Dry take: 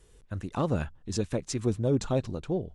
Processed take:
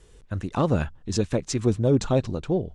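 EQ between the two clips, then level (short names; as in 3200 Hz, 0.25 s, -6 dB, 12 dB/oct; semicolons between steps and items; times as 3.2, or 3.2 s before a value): LPF 8700 Hz 12 dB/oct; +5.5 dB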